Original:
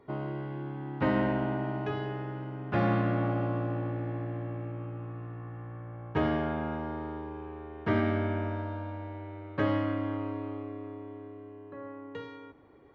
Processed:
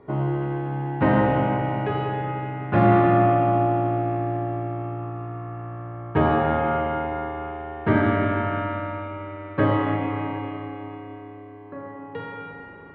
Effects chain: distance through air 320 m; spring tank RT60 2.9 s, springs 37/44 ms, chirp 50 ms, DRR -1.5 dB; trim +8.5 dB

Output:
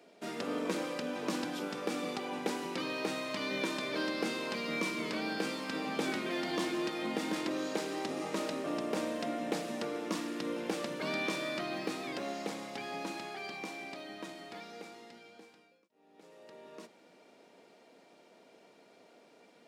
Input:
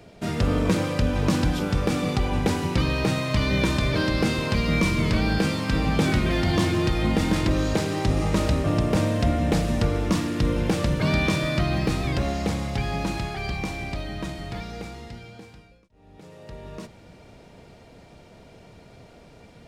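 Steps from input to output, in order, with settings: high-pass 250 Hz 24 dB/octave; trim -9 dB

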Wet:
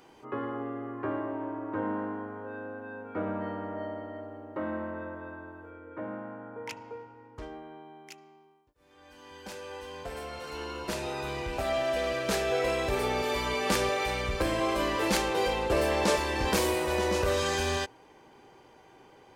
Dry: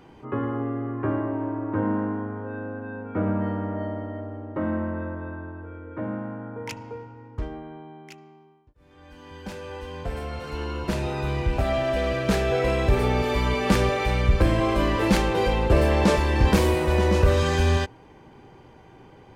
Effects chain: tone controls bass -12 dB, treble +9 dB, from 5.70 s treble -2 dB, from 7.36 s treble +6 dB; trim -3.5 dB

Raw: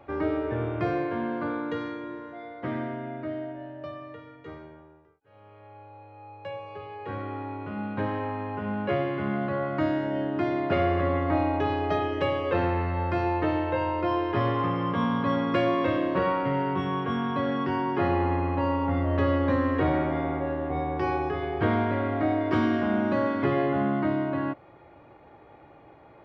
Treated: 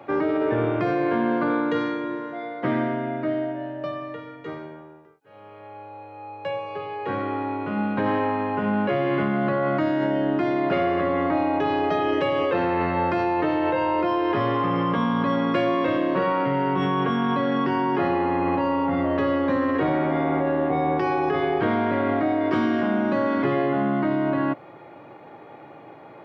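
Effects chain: high-pass 130 Hz 24 dB/octave; in parallel at -1.5 dB: compressor with a negative ratio -30 dBFS, ratio -0.5; on the sum: trim +1 dB

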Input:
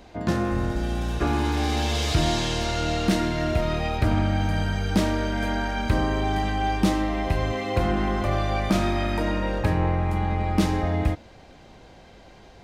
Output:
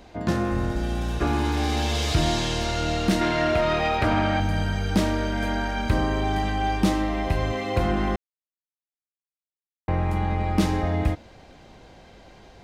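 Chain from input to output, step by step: 3.21–4.40 s: overdrive pedal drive 15 dB, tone 2.5 kHz, clips at -11 dBFS; 8.16–9.88 s: mute

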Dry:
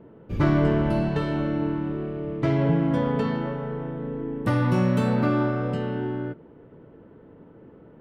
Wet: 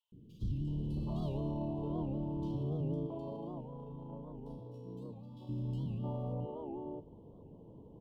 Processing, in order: median filter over 5 samples; elliptic band-stop 1–3 kHz, stop band 50 dB; bass shelf 140 Hz +7 dB; peak limiter -23 dBFS, peak gain reduction 16 dB; 2.94–5.37 s: compressor with a negative ratio -37 dBFS, ratio -0.5; three bands offset in time highs, lows, mids 120/670 ms, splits 310/2300 Hz; warped record 78 rpm, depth 160 cents; trim -5.5 dB

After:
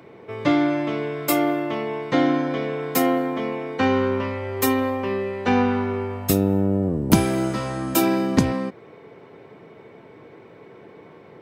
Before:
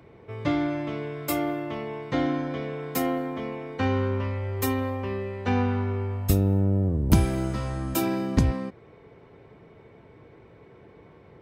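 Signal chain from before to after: high-pass 180 Hz 12 dB/octave; trim +7 dB

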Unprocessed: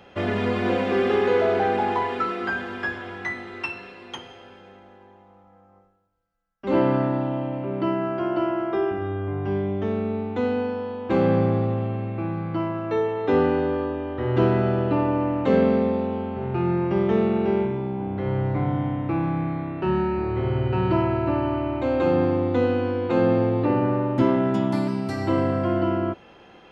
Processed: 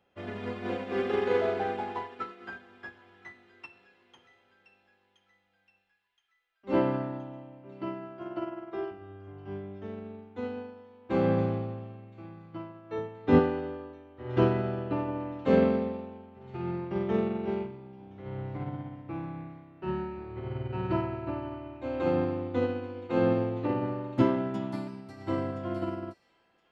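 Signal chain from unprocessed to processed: 12.98–13.39 s: resonant low shelf 290 Hz +6 dB, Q 1.5; feedback echo behind a high-pass 1021 ms, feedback 53%, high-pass 2.3 kHz, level -7.5 dB; upward expansion 2.5:1, over -30 dBFS

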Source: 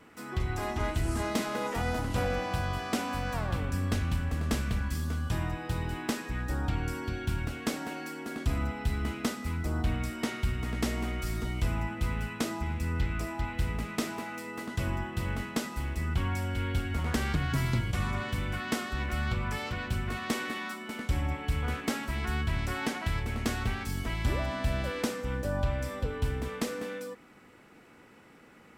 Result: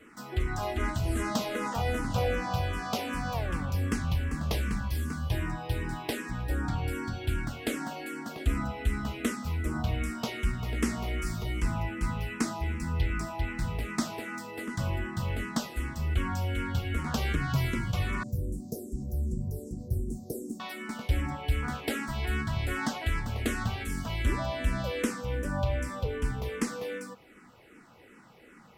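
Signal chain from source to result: 18.23–20.60 s: inverse Chebyshev band-stop 1.3–2.8 kHz, stop band 70 dB; barber-pole phaser -2.6 Hz; trim +3.5 dB

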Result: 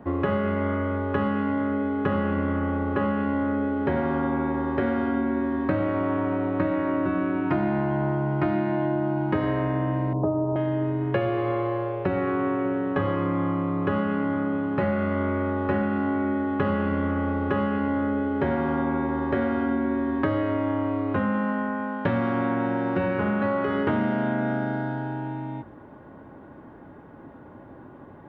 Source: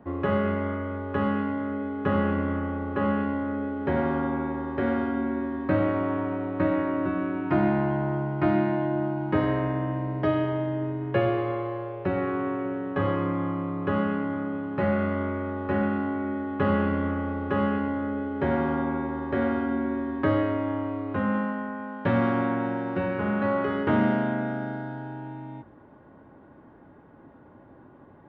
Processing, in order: 10.13–10.56 s: steep low-pass 1.1 kHz 48 dB/octave; compression, threshold -27 dBFS, peak gain reduction 9 dB; trim +6 dB

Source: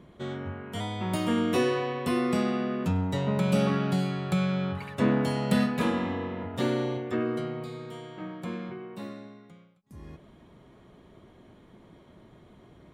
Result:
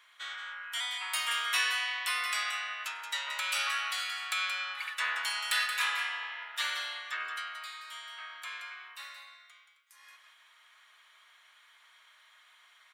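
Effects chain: high-pass 1.4 kHz 24 dB/octave; on a send: delay 177 ms -8.5 dB; on the sum: trim +7 dB

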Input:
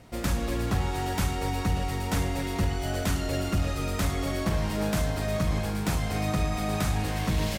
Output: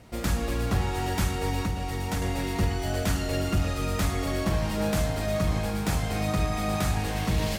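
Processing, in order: 1.62–2.22 s: compression 2.5:1, threshold -28 dBFS, peak gain reduction 5 dB; on a send: reverberation, pre-delay 3 ms, DRR 7 dB

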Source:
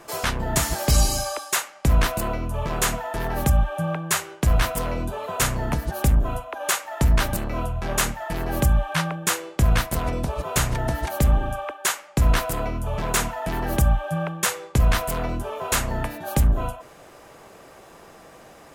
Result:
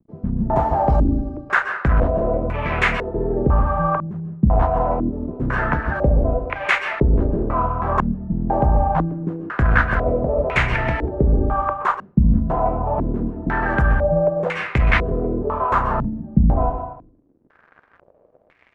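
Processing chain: waveshaping leveller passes 1; crossover distortion -39.5 dBFS; on a send at -7 dB: reverberation RT60 0.70 s, pre-delay 119 ms; on the sum: step-sequenced low-pass 2 Hz 210–2200 Hz

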